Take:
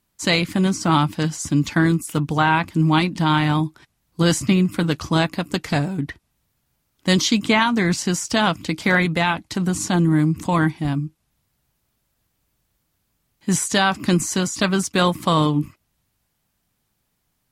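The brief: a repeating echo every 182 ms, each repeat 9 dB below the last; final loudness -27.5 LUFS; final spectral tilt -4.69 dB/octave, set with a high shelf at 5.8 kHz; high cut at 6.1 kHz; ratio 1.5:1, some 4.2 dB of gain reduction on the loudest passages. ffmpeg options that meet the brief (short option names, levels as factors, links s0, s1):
-af "lowpass=6100,highshelf=f=5800:g=6,acompressor=threshold=0.0631:ratio=1.5,aecho=1:1:182|364|546|728:0.355|0.124|0.0435|0.0152,volume=0.596"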